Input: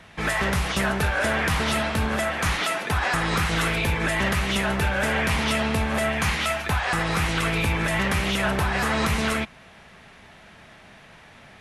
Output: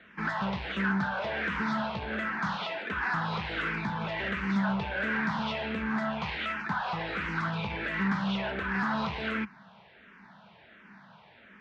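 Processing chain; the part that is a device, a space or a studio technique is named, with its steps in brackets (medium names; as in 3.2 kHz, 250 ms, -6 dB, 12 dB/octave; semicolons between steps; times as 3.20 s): barber-pole phaser into a guitar amplifier (barber-pole phaser -1.4 Hz; saturation -21 dBFS, distortion -17 dB; cabinet simulation 78–4400 Hz, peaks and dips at 86 Hz -10 dB, 200 Hz +10 dB, 950 Hz +7 dB, 1.5 kHz +7 dB); trim -6 dB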